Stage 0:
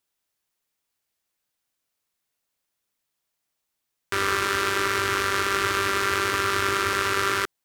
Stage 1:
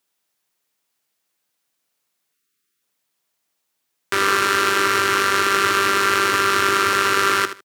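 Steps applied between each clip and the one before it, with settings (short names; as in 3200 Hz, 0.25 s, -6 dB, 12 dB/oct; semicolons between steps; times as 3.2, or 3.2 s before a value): on a send: feedback echo 77 ms, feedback 19%, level -11.5 dB; on the sum: spectral delete 2.34–2.82, 470–1100 Hz; HPF 140 Hz 12 dB/oct; gain +5.5 dB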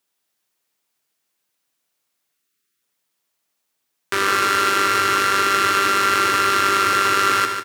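feedback echo 0.146 s, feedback 38%, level -7.5 dB; gain -1 dB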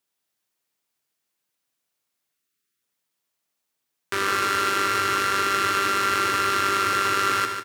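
low shelf 130 Hz +5 dB; gain -5 dB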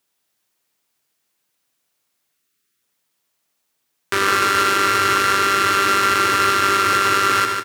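limiter -10.5 dBFS, peak gain reduction 4 dB; gain +7.5 dB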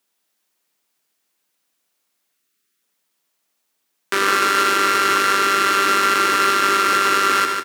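HPF 160 Hz 24 dB/oct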